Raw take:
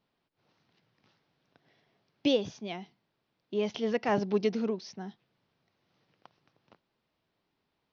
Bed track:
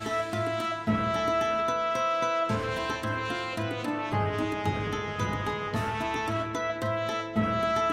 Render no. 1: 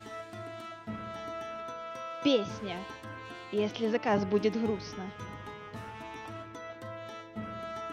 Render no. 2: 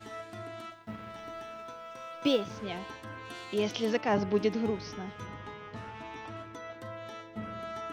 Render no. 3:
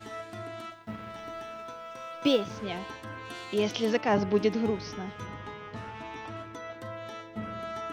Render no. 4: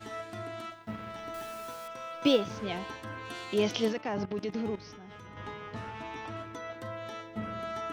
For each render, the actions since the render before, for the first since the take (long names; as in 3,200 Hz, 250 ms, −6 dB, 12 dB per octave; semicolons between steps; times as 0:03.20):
mix in bed track −13 dB
0:00.70–0:02.57: mu-law and A-law mismatch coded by A; 0:03.30–0:04.01: high-shelf EQ 4,300 Hz +12 dB; 0:05.27–0:06.37: low-pass filter 6,300 Hz
level +2.5 dB
0:01.34–0:01.88: bit-depth reduction 8 bits, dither none; 0:03.88–0:05.37: output level in coarse steps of 16 dB